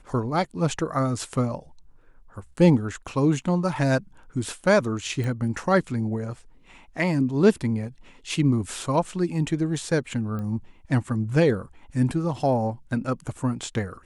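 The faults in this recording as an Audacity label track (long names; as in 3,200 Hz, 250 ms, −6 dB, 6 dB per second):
5.240000	5.240000	click
10.390000	10.390000	click −23 dBFS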